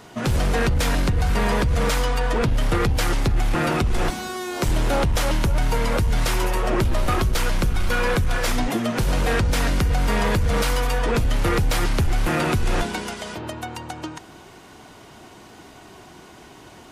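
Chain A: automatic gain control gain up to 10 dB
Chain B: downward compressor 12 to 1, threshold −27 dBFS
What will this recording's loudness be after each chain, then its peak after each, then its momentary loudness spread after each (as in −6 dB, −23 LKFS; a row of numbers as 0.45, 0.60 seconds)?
−13.5, −32.0 LKFS; −5.0, −17.5 dBFS; 8, 13 LU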